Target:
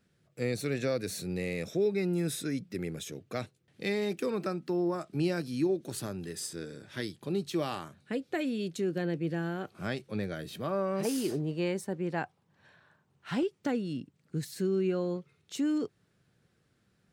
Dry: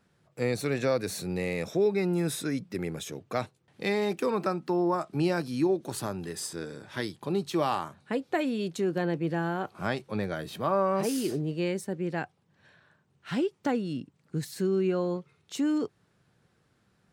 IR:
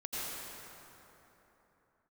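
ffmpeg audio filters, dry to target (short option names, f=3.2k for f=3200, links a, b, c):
-af "asetnsamples=n=441:p=0,asendcmd='11.05 equalizer g 3.5;13.43 equalizer g -6',equalizer=f=930:t=o:w=0.92:g=-10,volume=-2dB"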